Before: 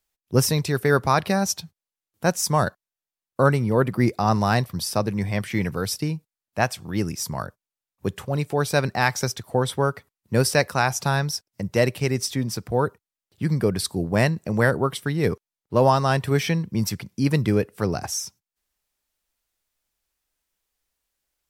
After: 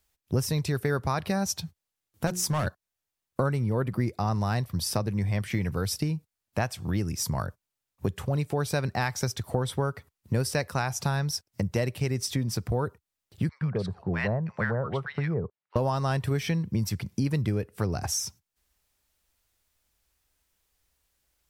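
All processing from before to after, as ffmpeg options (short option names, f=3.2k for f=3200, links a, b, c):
-filter_complex "[0:a]asettb=1/sr,asplit=3[a][b][c];[a]atrim=end=2.274[d];[b]atrim=start=2.27:end=2.67,asetpts=PTS-STARTPTS,afade=t=in:d=0.004:c=qsin,afade=t=out:st=0.396:d=0.004:c=qsin,highpass=54,bandreject=f=60:t=h:w=6,bandreject=f=120:t=h:w=6,bandreject=f=180:t=h:w=6,bandreject=f=240:t=h:w=6,bandreject=f=300:t=h:w=6,bandreject=f=360:t=h:w=6,bandreject=f=420:t=h:w=6,bandreject=f=480:t=h:w=6,asoftclip=type=hard:threshold=-19dB[e];[c]atrim=start=2.666[f];[d][e]acrossfade=d=0.004:c1=hsin:c2=qsin[g];[g][f]acrossfade=d=0.004:c1=qsin:c2=hsin,asettb=1/sr,asplit=3[h][i][j];[h]atrim=end=13.494[k];[i]atrim=start=13.49:end=15.76,asetpts=PTS-STARTPTS,afade=t=in:d=0.004:c=qsin,afade=t=out:st=2.266:d=0.004:c=qsin,highpass=140,lowpass=2.2k,equalizer=f=290:t=o:w=0.87:g=-11,acrossover=split=1100[l][m];[l]adelay=120[n];[n][m]amix=inputs=2:normalize=0,atrim=end_sample=100107[o];[j]atrim=start=15.756[p];[k][o]acrossfade=d=0.004:c1=hsin:c2=qsin[q];[q][p]acrossfade=d=0.004:c1=qsin:c2=hsin,equalizer=f=74:w=0.83:g=9.5,acompressor=threshold=-31dB:ratio=4,volume=4.5dB"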